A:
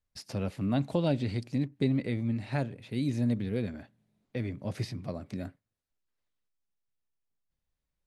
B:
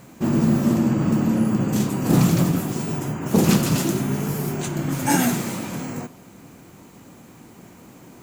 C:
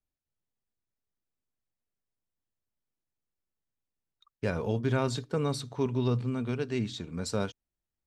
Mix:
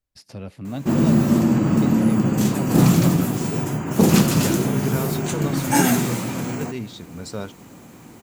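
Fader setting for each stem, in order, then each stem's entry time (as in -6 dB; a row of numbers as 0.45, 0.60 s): -2.0, +2.0, 0.0 dB; 0.00, 0.65, 0.00 s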